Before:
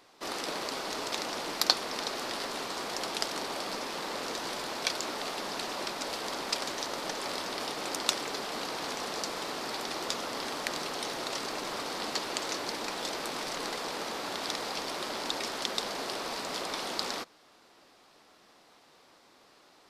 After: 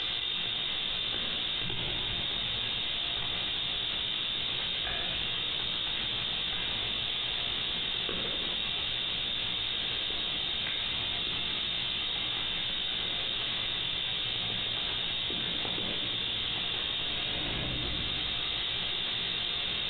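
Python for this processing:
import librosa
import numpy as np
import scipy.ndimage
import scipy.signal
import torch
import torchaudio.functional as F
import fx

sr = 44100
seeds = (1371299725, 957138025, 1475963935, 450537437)

y = scipy.signal.sosfilt(scipy.signal.butter(2, 70.0, 'highpass', fs=sr, output='sos'), x)
y = fx.tilt_shelf(y, sr, db=8.5, hz=940.0)
y = fx.freq_invert(y, sr, carrier_hz=4000)
y = fx.air_absorb(y, sr, metres=200.0)
y = fx.doubler(y, sr, ms=17.0, db=-6.0)
y = fx.room_shoebox(y, sr, seeds[0], volume_m3=1500.0, walls='mixed', distance_m=3.7)
y = fx.env_flatten(y, sr, amount_pct=100)
y = y * 10.0 ** (-9.0 / 20.0)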